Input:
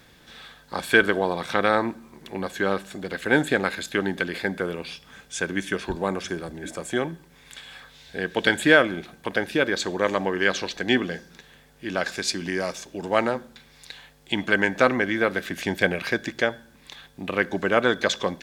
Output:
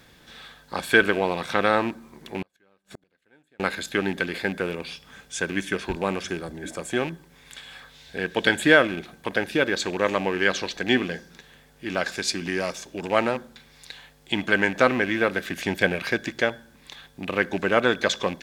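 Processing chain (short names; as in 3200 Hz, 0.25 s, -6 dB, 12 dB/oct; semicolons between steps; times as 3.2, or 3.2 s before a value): rattling part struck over -32 dBFS, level -25 dBFS; 2.42–3.6 flipped gate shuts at -25 dBFS, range -39 dB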